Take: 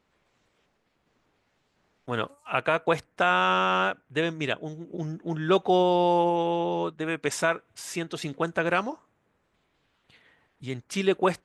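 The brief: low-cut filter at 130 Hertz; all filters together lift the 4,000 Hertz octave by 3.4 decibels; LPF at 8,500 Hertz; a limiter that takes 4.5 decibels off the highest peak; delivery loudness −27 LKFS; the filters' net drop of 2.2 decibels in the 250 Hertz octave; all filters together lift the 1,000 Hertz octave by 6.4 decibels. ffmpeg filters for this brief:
ffmpeg -i in.wav -af "highpass=130,lowpass=8500,equalizer=frequency=250:width_type=o:gain=-4.5,equalizer=frequency=1000:width_type=o:gain=8.5,equalizer=frequency=4000:width_type=o:gain=4,volume=-2.5dB,alimiter=limit=-12.5dB:level=0:latency=1" out.wav

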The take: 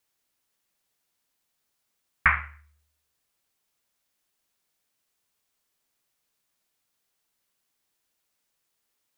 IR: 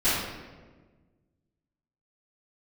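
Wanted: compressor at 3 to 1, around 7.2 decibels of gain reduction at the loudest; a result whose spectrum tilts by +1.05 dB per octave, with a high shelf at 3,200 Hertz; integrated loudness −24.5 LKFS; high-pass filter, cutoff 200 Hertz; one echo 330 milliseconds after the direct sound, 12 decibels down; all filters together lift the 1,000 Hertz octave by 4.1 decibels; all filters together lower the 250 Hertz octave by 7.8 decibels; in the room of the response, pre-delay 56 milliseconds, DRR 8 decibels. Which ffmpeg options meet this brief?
-filter_complex "[0:a]highpass=200,equalizer=frequency=250:width_type=o:gain=-7.5,equalizer=frequency=1000:width_type=o:gain=5,highshelf=frequency=3200:gain=3.5,acompressor=threshold=-23dB:ratio=3,aecho=1:1:330:0.251,asplit=2[link_01][link_02];[1:a]atrim=start_sample=2205,adelay=56[link_03];[link_02][link_03]afir=irnorm=-1:irlink=0,volume=-22.5dB[link_04];[link_01][link_04]amix=inputs=2:normalize=0,volume=6.5dB"

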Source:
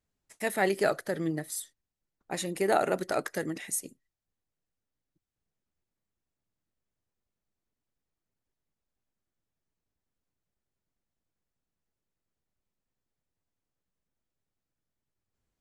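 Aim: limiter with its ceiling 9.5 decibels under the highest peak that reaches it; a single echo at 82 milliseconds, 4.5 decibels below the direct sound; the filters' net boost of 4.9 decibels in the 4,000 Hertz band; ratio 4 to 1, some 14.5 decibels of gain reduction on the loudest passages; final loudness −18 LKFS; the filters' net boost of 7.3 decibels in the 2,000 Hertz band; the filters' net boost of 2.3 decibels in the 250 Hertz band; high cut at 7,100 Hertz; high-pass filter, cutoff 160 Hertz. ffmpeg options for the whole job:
ffmpeg -i in.wav -af "highpass=160,lowpass=7100,equalizer=frequency=250:width_type=o:gain=4.5,equalizer=frequency=2000:width_type=o:gain=8,equalizer=frequency=4000:width_type=o:gain=4,acompressor=threshold=-35dB:ratio=4,alimiter=level_in=6.5dB:limit=-24dB:level=0:latency=1,volume=-6.5dB,aecho=1:1:82:0.596,volume=22.5dB" out.wav

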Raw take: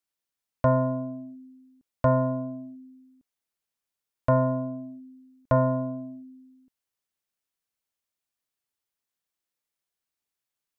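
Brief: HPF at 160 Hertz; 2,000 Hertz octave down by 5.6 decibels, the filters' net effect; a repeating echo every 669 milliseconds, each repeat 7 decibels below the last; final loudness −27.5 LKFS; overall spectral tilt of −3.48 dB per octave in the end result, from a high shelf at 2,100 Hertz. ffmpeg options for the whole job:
ffmpeg -i in.wav -af "highpass=160,equalizer=frequency=2000:width_type=o:gain=-7.5,highshelf=frequency=2100:gain=-4.5,aecho=1:1:669|1338|2007|2676|3345:0.447|0.201|0.0905|0.0407|0.0183,volume=3dB" out.wav

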